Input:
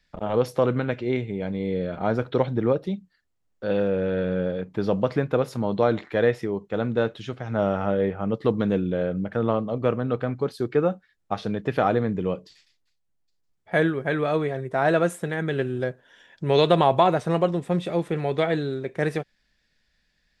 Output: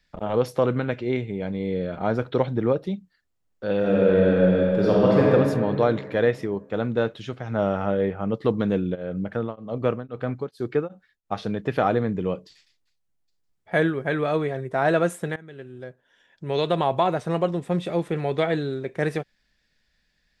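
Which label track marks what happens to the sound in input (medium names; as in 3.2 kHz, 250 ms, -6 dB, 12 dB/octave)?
3.780000	5.310000	reverb throw, RT60 2.4 s, DRR -5.5 dB
8.940000	11.370000	tremolo of two beating tones nulls at 1.4 Hz -> 3.4 Hz
15.360000	17.870000	fade in, from -20 dB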